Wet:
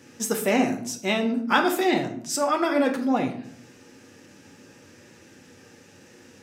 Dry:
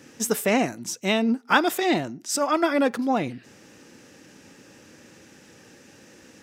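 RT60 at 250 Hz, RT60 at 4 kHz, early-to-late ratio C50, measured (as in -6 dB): 0.90 s, 0.40 s, 10.0 dB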